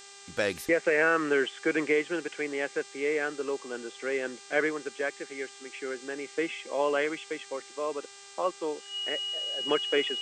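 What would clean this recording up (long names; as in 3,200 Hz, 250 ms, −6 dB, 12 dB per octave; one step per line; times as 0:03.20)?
hum removal 398.3 Hz, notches 22
notch filter 2,900 Hz, Q 30
noise reduction from a noise print 24 dB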